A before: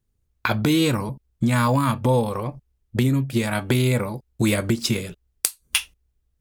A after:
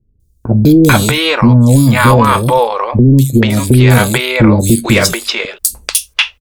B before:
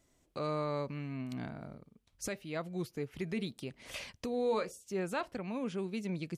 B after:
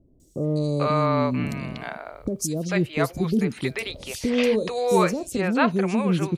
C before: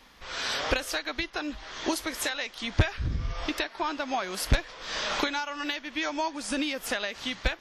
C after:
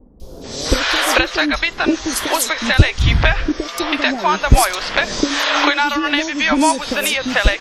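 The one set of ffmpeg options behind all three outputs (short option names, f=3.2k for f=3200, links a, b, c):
-filter_complex "[0:a]acrossover=split=490|4500[a][b][c];[c]adelay=200[d];[b]adelay=440[e];[a][e][d]amix=inputs=3:normalize=0,apsyclip=17dB,volume=-1.5dB"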